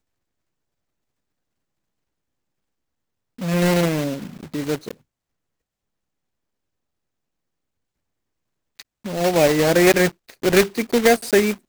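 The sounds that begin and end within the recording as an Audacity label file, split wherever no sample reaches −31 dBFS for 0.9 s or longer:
3.390000	4.910000	sound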